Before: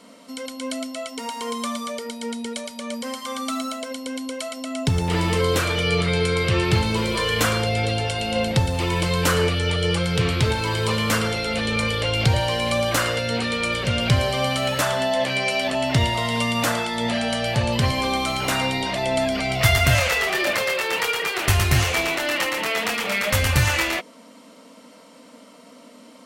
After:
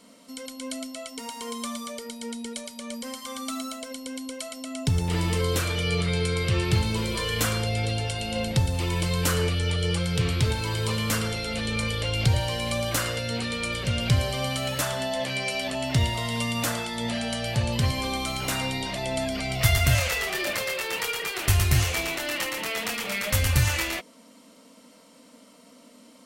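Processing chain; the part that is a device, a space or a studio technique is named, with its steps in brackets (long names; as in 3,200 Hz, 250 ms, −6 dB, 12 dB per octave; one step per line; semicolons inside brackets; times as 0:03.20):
smiley-face EQ (low-shelf EQ 98 Hz +6.5 dB; parametric band 950 Hz −3 dB 3 octaves; high-shelf EQ 6,100 Hz +5.5 dB)
level −5 dB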